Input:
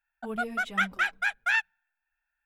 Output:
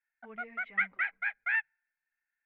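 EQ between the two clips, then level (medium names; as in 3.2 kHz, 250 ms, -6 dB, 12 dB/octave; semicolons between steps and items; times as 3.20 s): four-pole ladder low-pass 2.2 kHz, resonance 80%; bass shelf 170 Hz -9 dB; hum notches 60/120 Hz; 0.0 dB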